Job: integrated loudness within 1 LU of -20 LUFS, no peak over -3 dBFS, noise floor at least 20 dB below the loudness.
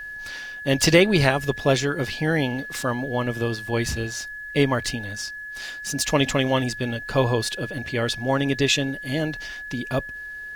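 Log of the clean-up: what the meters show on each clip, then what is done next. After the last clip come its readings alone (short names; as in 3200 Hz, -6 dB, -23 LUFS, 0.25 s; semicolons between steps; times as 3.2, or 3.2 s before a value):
steady tone 1700 Hz; tone level -33 dBFS; loudness -23.5 LUFS; peak -2.5 dBFS; loudness target -20.0 LUFS
-> notch 1700 Hz, Q 30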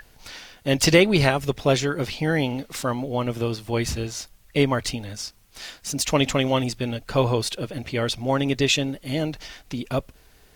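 steady tone none; loudness -23.5 LUFS; peak -2.5 dBFS; loudness target -20.0 LUFS
-> gain +3.5 dB; limiter -3 dBFS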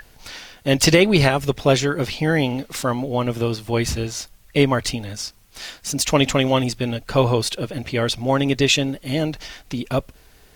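loudness -20.5 LUFS; peak -3.0 dBFS; noise floor -51 dBFS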